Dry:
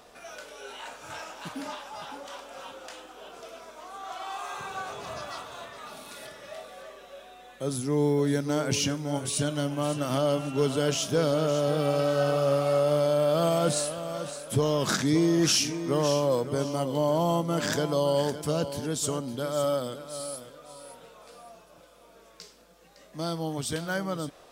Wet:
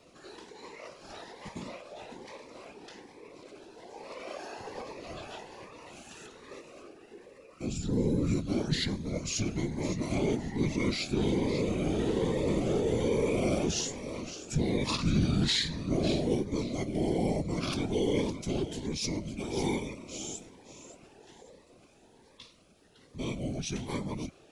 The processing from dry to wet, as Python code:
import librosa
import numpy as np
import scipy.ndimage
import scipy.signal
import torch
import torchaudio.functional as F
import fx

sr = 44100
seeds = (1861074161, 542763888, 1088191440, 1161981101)

y = fx.formant_shift(x, sr, semitones=-6)
y = fx.whisperise(y, sr, seeds[0])
y = fx.notch_cascade(y, sr, direction='rising', hz=1.2)
y = F.gain(torch.from_numpy(y), -3.0).numpy()